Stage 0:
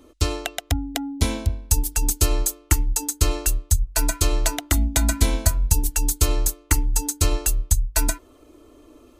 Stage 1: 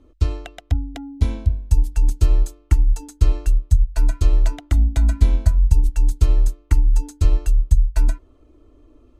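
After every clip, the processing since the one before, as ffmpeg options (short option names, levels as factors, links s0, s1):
-af "aemphasis=mode=reproduction:type=bsi,volume=0.398"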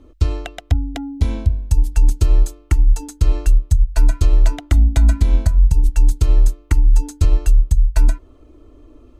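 -af "alimiter=limit=0.299:level=0:latency=1:release=165,volume=2"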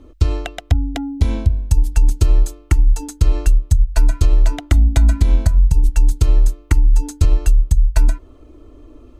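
-af "acompressor=threshold=0.316:ratio=6,volume=1.41"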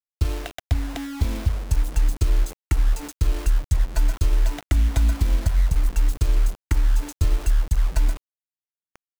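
-af "acrusher=bits=4:mix=0:aa=0.000001,volume=0.447"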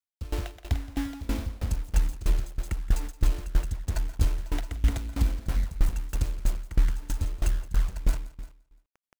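-filter_complex "[0:a]asoftclip=type=hard:threshold=0.2,asplit=2[s0][s1];[s1]aecho=0:1:172|344|516|688:0.473|0.147|0.0455|0.0141[s2];[s0][s2]amix=inputs=2:normalize=0,aeval=exprs='val(0)*pow(10,-22*if(lt(mod(3.1*n/s,1),2*abs(3.1)/1000),1-mod(3.1*n/s,1)/(2*abs(3.1)/1000),(mod(3.1*n/s,1)-2*abs(3.1)/1000)/(1-2*abs(3.1)/1000))/20)':c=same,volume=1.19"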